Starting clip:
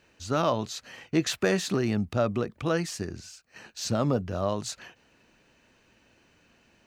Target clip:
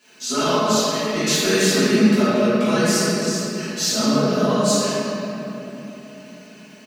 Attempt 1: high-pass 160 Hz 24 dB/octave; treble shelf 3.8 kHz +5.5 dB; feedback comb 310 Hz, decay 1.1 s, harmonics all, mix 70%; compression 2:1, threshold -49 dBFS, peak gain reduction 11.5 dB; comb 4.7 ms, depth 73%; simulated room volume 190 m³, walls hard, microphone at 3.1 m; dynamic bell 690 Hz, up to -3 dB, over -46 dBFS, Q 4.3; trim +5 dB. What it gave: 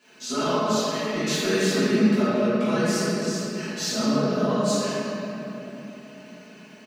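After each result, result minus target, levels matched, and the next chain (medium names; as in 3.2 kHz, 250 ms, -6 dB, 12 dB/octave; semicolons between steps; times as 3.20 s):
compression: peak gain reduction +4 dB; 8 kHz band -3.5 dB
high-pass 160 Hz 24 dB/octave; treble shelf 3.8 kHz +5.5 dB; feedback comb 310 Hz, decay 1.1 s, harmonics all, mix 70%; compression 2:1, threshold -40 dBFS, peak gain reduction 7 dB; comb 4.7 ms, depth 73%; simulated room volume 190 m³, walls hard, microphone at 3.1 m; dynamic bell 690 Hz, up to -3 dB, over -46 dBFS, Q 4.3; trim +5 dB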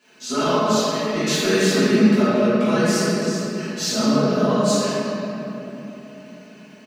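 8 kHz band -4.0 dB
high-pass 160 Hz 24 dB/octave; treble shelf 3.8 kHz +14 dB; feedback comb 310 Hz, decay 1.1 s, harmonics all, mix 70%; compression 2:1, threshold -40 dBFS, peak gain reduction 7.5 dB; comb 4.7 ms, depth 73%; simulated room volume 190 m³, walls hard, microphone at 3.1 m; dynamic bell 690 Hz, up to -3 dB, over -46 dBFS, Q 4.3; trim +5 dB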